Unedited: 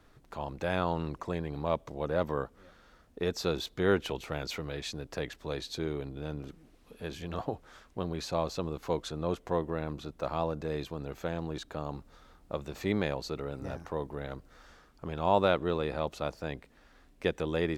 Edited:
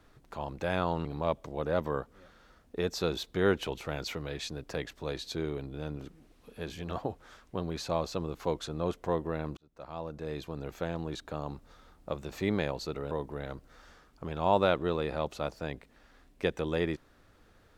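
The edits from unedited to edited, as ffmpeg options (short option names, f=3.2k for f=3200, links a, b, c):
-filter_complex "[0:a]asplit=4[a][b][c][d];[a]atrim=end=1.052[e];[b]atrim=start=1.478:end=10,asetpts=PTS-STARTPTS,afade=t=out:st=8.518:d=0.004:c=hsin[f];[c]atrim=start=10:end=13.542,asetpts=PTS-STARTPTS,afade=t=in:d=1.04[g];[d]atrim=start=13.918[h];[f][g]concat=n=2:v=0:a=1[i];[e][i]acrossfade=d=0.004:c1=hsin:c2=hsin[j];[j][h]acrossfade=d=0.004:c1=hsin:c2=hsin"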